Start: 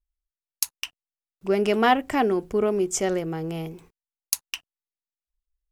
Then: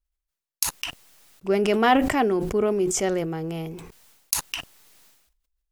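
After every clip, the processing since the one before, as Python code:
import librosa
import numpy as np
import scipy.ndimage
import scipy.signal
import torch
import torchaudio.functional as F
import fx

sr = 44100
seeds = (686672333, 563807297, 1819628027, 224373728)

y = fx.sustainer(x, sr, db_per_s=52.0)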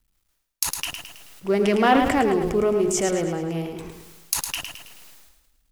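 y = fx.law_mismatch(x, sr, coded='mu')
y = fx.echo_feedback(y, sr, ms=108, feedback_pct=46, wet_db=-6.5)
y = fx.doppler_dist(y, sr, depth_ms=0.13)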